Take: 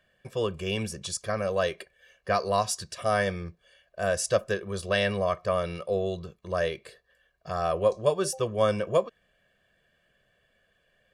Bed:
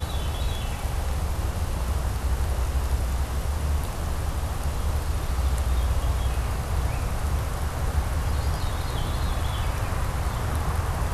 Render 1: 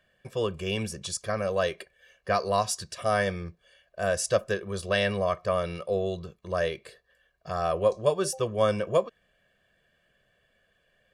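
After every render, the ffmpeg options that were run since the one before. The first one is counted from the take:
-af anull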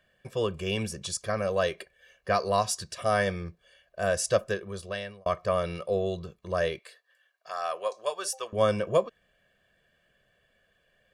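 -filter_complex "[0:a]asettb=1/sr,asplit=3[s0][s1][s2];[s0]atrim=end=6.794[s3];[s1]atrim=start=6.79:end=8.53,asetpts=PTS-STARTPTS,afade=t=in:d=0.004:c=qsin,afade=t=out:st=1.736:d=0.004:c=qsin,highpass=830[s4];[s2]atrim=start=8.526[s5];[s3][s4]acrossfade=d=0.004:c1=hsin:c2=qsin[s6];[s6][s5]acrossfade=d=0.004:c1=qsin:c2=hsin,asplit=2[s7][s8];[s7]atrim=end=5.26,asetpts=PTS-STARTPTS,afade=t=out:st=4.39:d=0.87[s9];[s8]atrim=start=5.26,asetpts=PTS-STARTPTS,afade=t=in:d=0.004:c=hsin[s10];[s9][s10]concat=n=2:v=0:a=1"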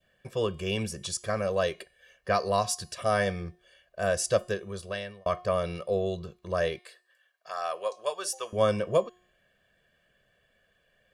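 -af "bandreject=f=360:t=h:w=4,bandreject=f=720:t=h:w=4,bandreject=f=1080:t=h:w=4,bandreject=f=1440:t=h:w=4,bandreject=f=1800:t=h:w=4,bandreject=f=2160:t=h:w=4,bandreject=f=2520:t=h:w=4,bandreject=f=2880:t=h:w=4,bandreject=f=3240:t=h:w=4,bandreject=f=3600:t=h:w=4,bandreject=f=3960:t=h:w=4,bandreject=f=4320:t=h:w=4,bandreject=f=4680:t=h:w=4,bandreject=f=5040:t=h:w=4,bandreject=f=5400:t=h:w=4,bandreject=f=5760:t=h:w=4,bandreject=f=6120:t=h:w=4,bandreject=f=6480:t=h:w=4,bandreject=f=6840:t=h:w=4,bandreject=f=7200:t=h:w=4,bandreject=f=7560:t=h:w=4,bandreject=f=7920:t=h:w=4,bandreject=f=8280:t=h:w=4,bandreject=f=8640:t=h:w=4,bandreject=f=9000:t=h:w=4,bandreject=f=9360:t=h:w=4,bandreject=f=9720:t=h:w=4,bandreject=f=10080:t=h:w=4,bandreject=f=10440:t=h:w=4,bandreject=f=10800:t=h:w=4,bandreject=f=11160:t=h:w=4,bandreject=f=11520:t=h:w=4,bandreject=f=11880:t=h:w=4,bandreject=f=12240:t=h:w=4,adynamicequalizer=threshold=0.00891:dfrequency=1500:dqfactor=0.88:tfrequency=1500:tqfactor=0.88:attack=5:release=100:ratio=0.375:range=2:mode=cutabove:tftype=bell"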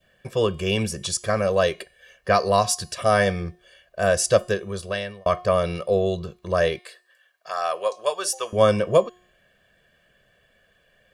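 -af "volume=2.24"

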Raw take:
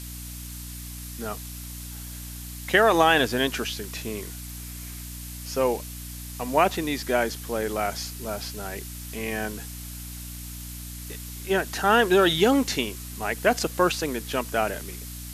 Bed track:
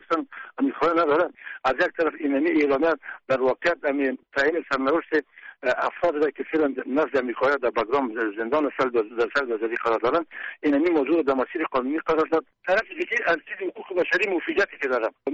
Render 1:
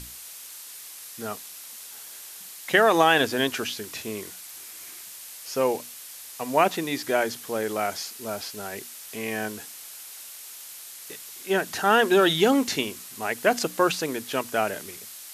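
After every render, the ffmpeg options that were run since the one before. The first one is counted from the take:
-af "bandreject=f=60:t=h:w=6,bandreject=f=120:t=h:w=6,bandreject=f=180:t=h:w=6,bandreject=f=240:t=h:w=6,bandreject=f=300:t=h:w=6"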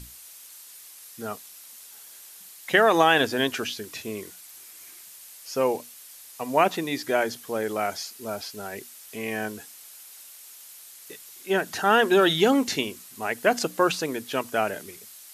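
-af "afftdn=nr=6:nf=-42"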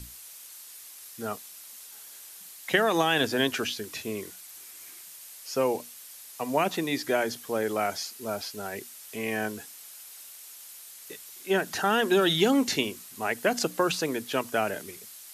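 -filter_complex "[0:a]acrossover=split=280|3000[s0][s1][s2];[s1]acompressor=threshold=0.0794:ratio=6[s3];[s0][s3][s2]amix=inputs=3:normalize=0"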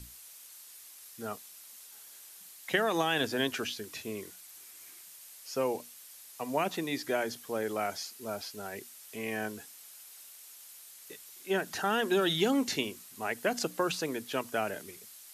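-af "volume=0.562"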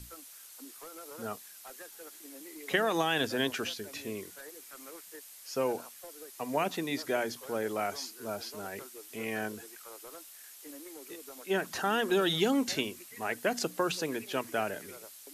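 -filter_complex "[1:a]volume=0.0398[s0];[0:a][s0]amix=inputs=2:normalize=0"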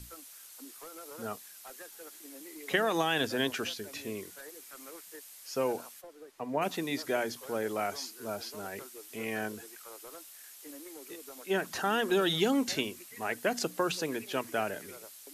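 -filter_complex "[0:a]asplit=3[s0][s1][s2];[s0]afade=t=out:st=6:d=0.02[s3];[s1]lowpass=f=1300:p=1,afade=t=in:st=6:d=0.02,afade=t=out:st=6.61:d=0.02[s4];[s2]afade=t=in:st=6.61:d=0.02[s5];[s3][s4][s5]amix=inputs=3:normalize=0"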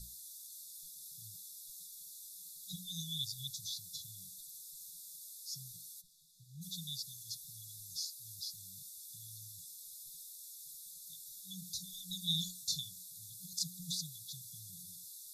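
-af "afftfilt=real='re*(1-between(b*sr/4096,190,3400))':imag='im*(1-between(b*sr/4096,190,3400))':win_size=4096:overlap=0.75,equalizer=f=96:t=o:w=1.5:g=-5.5"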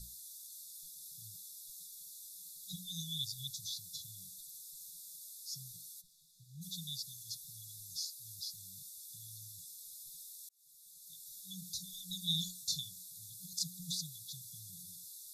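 -filter_complex "[0:a]asplit=2[s0][s1];[s0]atrim=end=10.49,asetpts=PTS-STARTPTS,afade=t=out:st=10.486:d=0.004:c=hsin[s2];[s1]atrim=start=10.49,asetpts=PTS-STARTPTS,afade=t=in:d=0.85[s3];[s2][s3]concat=n=2:v=0:a=1"

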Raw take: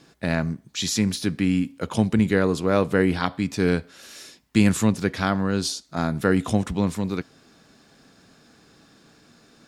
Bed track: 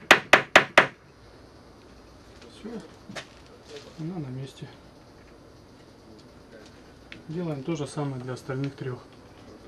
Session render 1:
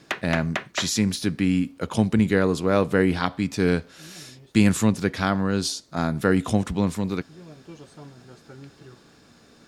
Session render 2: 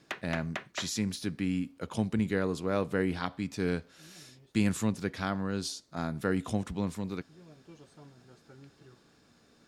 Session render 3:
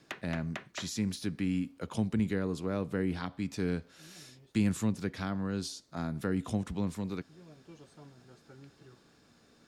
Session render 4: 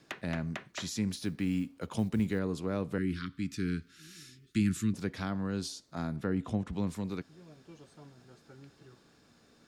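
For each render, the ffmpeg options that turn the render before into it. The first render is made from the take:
-filter_complex "[1:a]volume=0.211[s0];[0:a][s0]amix=inputs=2:normalize=0"
-af "volume=0.335"
-filter_complex "[0:a]acrossover=split=330[s0][s1];[s1]acompressor=threshold=0.01:ratio=2[s2];[s0][s2]amix=inputs=2:normalize=0"
-filter_complex "[0:a]asettb=1/sr,asplit=3[s0][s1][s2];[s0]atrim=end=1.114[s3];[s1]atrim=start=1.11:end=2.39,asetpts=PTS-STARTPTS,afade=t=in:d=0.004:c=qsin,afade=t=out:st=1.276:d=0.004:c=qsin,acrusher=bits=9:mode=log:mix=0:aa=0.000001[s4];[s2]atrim=start=2.386[s5];[s3][s4]acrossfade=d=0.004:c1=hsin:c2=qsin[s6];[s6][s5]acrossfade=d=0.004:c1=qsin:c2=hsin,asettb=1/sr,asplit=3[s7][s8][s9];[s7]atrim=end=2.984[s10];[s8]atrim=start=2.98:end=4.94,asetpts=PTS-STARTPTS,afade=t=in:d=0.004:c=qsin,afade=t=out:st=1.956:d=0.004:c=qsin,asuperstop=centerf=690:order=8:qfactor=0.79[s11];[s9]atrim=start=4.936[s12];[s10][s11]acrossfade=d=0.004:c1=hsin:c2=qsin[s13];[s13][s12]acrossfade=d=0.004:c1=qsin:c2=hsin,asettb=1/sr,asplit=3[s14][s15][s16];[s14]atrim=end=6.164[s17];[s15]atrim=start=6.16:end=6.73,asetpts=PTS-STARTPTS,afade=t=in:d=0.004:c=qsin,afade=t=out:st=0.566:d=0.004:c=qsin,lowpass=f=2500:p=1[s18];[s16]atrim=start=6.726[s19];[s17][s18]acrossfade=d=0.004:c1=hsin:c2=qsin[s20];[s20][s19]acrossfade=d=0.004:c1=qsin:c2=hsin"

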